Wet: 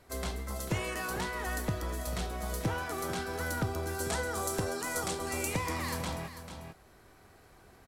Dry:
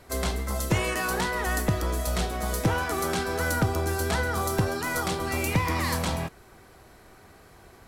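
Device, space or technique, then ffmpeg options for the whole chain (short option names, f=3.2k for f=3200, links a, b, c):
ducked delay: -filter_complex "[0:a]asettb=1/sr,asplit=3[a][b][c];[a]atrim=end=4.004[d];[b]atrim=start=4:end=5.76,asetpts=PTS-STARTPTS,afade=t=in:d=0.004:c=qsin,afade=t=out:st=1.756:d=0.004:c=qsin,equalizer=f=125:t=o:w=1:g=-4,equalizer=f=500:t=o:w=1:g=4,equalizer=f=8k:t=o:w=1:g=9[e];[c]atrim=start=5.756[f];[d][e]acrossfade=d=0.004:c1=hsin:c2=qsin[g];[g][f]acrossfade=d=0.004:c1=qsin:c2=hsin,asplit=3[h][i][j];[i]adelay=443,volume=-3dB[k];[j]apad=whole_len=366670[l];[k][l]sidechaincompress=threshold=-34dB:ratio=4:attack=16:release=1070[m];[h][m]amix=inputs=2:normalize=0,volume=-8dB"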